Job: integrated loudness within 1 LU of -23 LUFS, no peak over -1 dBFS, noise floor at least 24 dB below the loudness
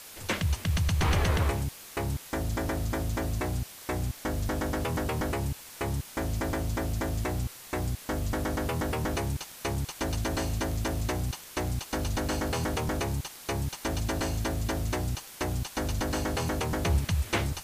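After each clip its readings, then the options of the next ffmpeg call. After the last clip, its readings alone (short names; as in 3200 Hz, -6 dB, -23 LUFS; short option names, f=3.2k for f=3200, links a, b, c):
noise floor -47 dBFS; noise floor target -55 dBFS; loudness -31.0 LUFS; peak -13.5 dBFS; loudness target -23.0 LUFS
-> -af "afftdn=nr=8:nf=-47"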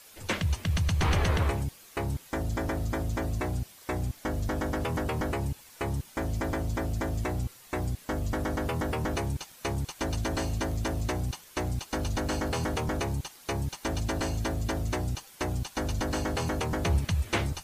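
noise floor -53 dBFS; noise floor target -56 dBFS
-> -af "afftdn=nr=6:nf=-53"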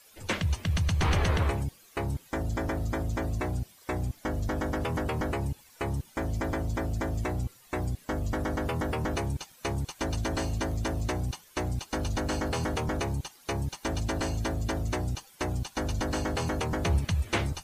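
noise floor -57 dBFS; loudness -31.5 LUFS; peak -13.5 dBFS; loudness target -23.0 LUFS
-> -af "volume=8.5dB"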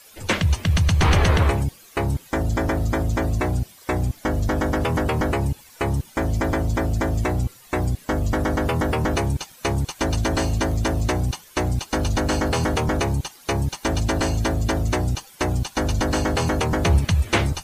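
loudness -23.0 LUFS; peak -5.0 dBFS; noise floor -48 dBFS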